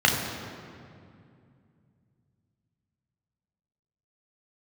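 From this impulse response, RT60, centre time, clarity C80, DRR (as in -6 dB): 2.4 s, 67 ms, 5.0 dB, -0.5 dB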